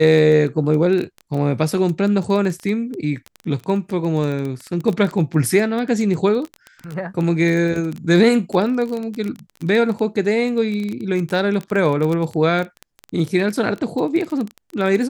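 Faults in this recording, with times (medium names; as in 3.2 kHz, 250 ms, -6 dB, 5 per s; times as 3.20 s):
crackle 16 per s -22 dBFS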